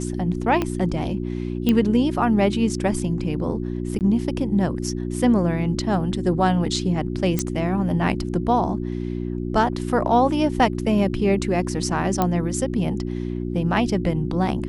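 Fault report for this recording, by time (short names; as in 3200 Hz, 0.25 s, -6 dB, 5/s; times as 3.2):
hum 60 Hz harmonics 6 -27 dBFS
0.62 pop -10 dBFS
1.69 pop -8 dBFS
3.99–4.01 gap 18 ms
7.39 pop -9 dBFS
12.22 pop -7 dBFS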